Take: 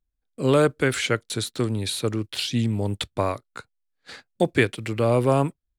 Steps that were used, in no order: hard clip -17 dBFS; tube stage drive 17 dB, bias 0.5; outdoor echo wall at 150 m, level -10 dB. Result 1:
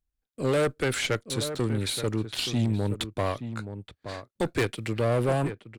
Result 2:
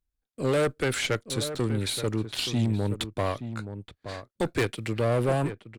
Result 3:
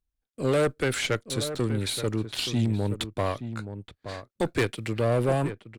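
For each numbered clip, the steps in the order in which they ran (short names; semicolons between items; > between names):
hard clip > outdoor echo > tube stage; hard clip > tube stage > outdoor echo; tube stage > hard clip > outdoor echo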